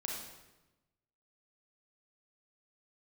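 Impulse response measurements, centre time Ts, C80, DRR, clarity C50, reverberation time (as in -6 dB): 59 ms, 4.0 dB, -2.0 dB, 1.0 dB, 1.1 s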